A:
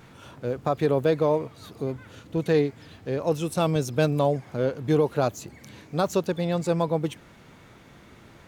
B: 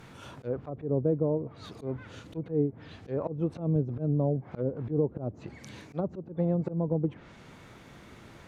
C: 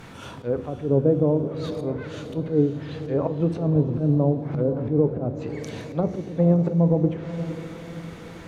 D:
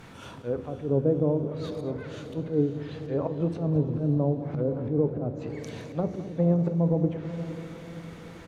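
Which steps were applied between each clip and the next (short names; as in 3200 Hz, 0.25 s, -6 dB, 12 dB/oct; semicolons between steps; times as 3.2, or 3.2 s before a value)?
treble ducked by the level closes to 370 Hz, closed at -20.5 dBFS; auto swell 0.121 s
diffused feedback echo 0.527 s, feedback 48%, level -11.5 dB; on a send at -10 dB: reverb RT60 0.70 s, pre-delay 4 ms; on the sum: gain +7 dB
echo 0.21 s -15 dB; gain -4.5 dB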